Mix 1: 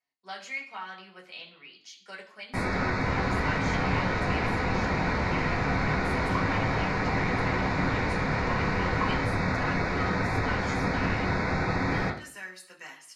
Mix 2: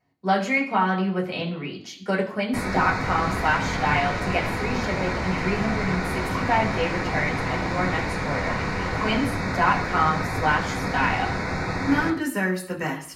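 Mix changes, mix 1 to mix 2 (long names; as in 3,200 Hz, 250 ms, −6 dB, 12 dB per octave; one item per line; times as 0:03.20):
speech: remove first difference
master: remove high-frequency loss of the air 84 metres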